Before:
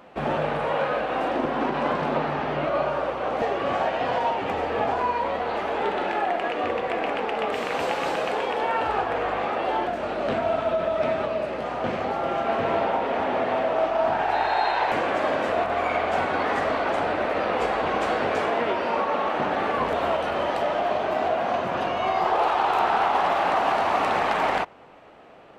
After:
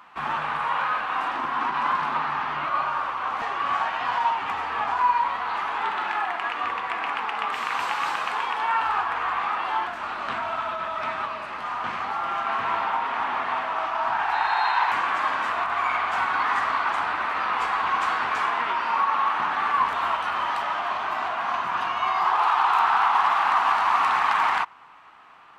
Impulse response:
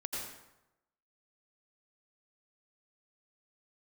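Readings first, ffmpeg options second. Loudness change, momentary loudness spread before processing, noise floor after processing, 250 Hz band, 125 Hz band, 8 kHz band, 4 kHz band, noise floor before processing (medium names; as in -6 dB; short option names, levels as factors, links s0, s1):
0.0 dB, 4 LU, -34 dBFS, -13.0 dB, under -10 dB, no reading, +0.5 dB, -30 dBFS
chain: -af "lowshelf=f=760:t=q:w=3:g=-11"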